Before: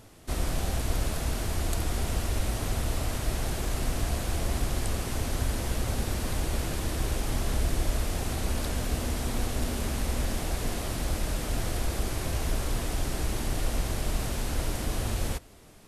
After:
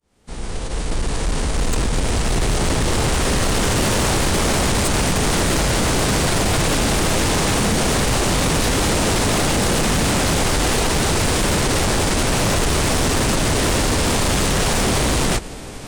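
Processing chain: fade-in on the opening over 3.91 s; formant-preserving pitch shift -7 st; sine folder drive 18 dB, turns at -14.5 dBFS

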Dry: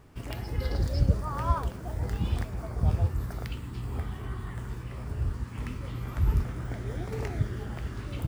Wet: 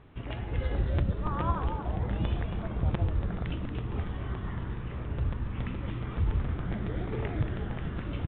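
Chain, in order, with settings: compression, threshold -23 dBFS, peak gain reduction 7.5 dB; frequency-shifting echo 230 ms, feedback 52%, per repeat -130 Hz, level -7 dB; crackling interface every 0.14 s, samples 256, repeat, from 0.98 s; A-law 64 kbps 8 kHz

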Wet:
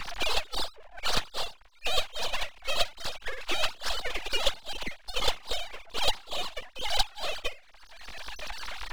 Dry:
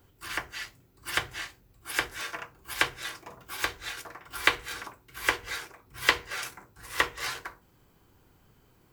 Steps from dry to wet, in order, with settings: formants replaced by sine waves; full-wave rectifier; three bands compressed up and down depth 100%; trim +5.5 dB

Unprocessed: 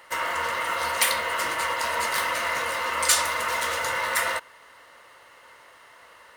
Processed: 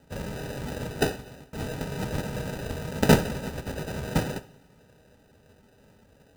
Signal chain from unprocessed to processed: pre-emphasis filter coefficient 0.97; 3.34–3.88 s: compressor with a negative ratio -37 dBFS, ratio -0.5; loudest bins only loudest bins 64; sample-and-hold 40×; comb of notches 350 Hz; 0.80–1.53 s: fade out; two-slope reverb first 0.53 s, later 2.1 s, from -18 dB, DRR 12.5 dB; trim +8.5 dB

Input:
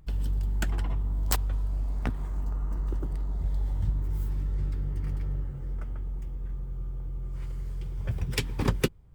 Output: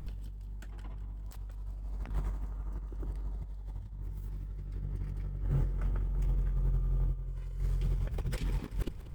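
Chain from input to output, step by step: 7.13–7.59 s: comb 2 ms, depth 81%; compressor with a negative ratio -35 dBFS, ratio -0.5; in parallel at -8 dB: overload inside the chain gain 33 dB; on the sum: thinning echo 191 ms, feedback 52%, level -13.5 dB

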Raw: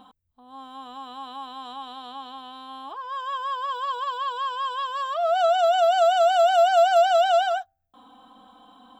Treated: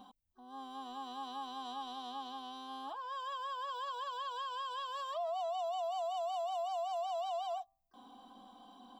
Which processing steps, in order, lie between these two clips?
compression 5:1, threshold -29 dBFS, peak gain reduction 13.5 dB; static phaser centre 400 Hz, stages 6; peak limiter -29.5 dBFS, peak gain reduction 6 dB; harmony voices +7 st -15 dB; trim -3.5 dB

